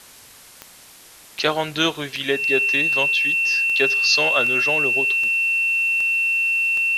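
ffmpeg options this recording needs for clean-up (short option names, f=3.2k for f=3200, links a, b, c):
-af "adeclick=t=4,bandreject=f=2.7k:w=30,afwtdn=0.0063"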